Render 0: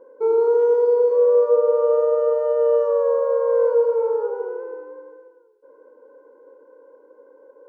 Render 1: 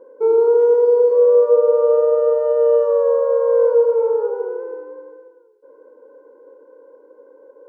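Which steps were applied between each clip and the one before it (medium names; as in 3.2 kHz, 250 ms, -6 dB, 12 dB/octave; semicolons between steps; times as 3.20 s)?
peaking EQ 380 Hz +4 dB 1.6 oct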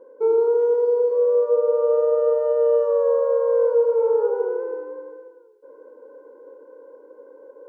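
gain riding within 5 dB 0.5 s; trim -4 dB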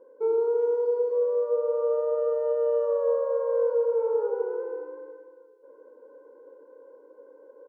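delay 343 ms -12.5 dB; trim -6 dB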